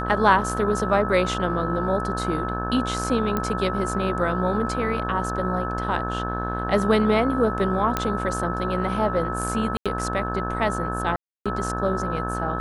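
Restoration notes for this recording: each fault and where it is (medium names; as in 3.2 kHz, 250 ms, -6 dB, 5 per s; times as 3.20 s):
buzz 60 Hz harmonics 29 -29 dBFS
whine 1.3 kHz -29 dBFS
3.37 s: pop -11 dBFS
7.97 s: pop -8 dBFS
9.77–9.86 s: dropout 86 ms
11.16–11.46 s: dropout 296 ms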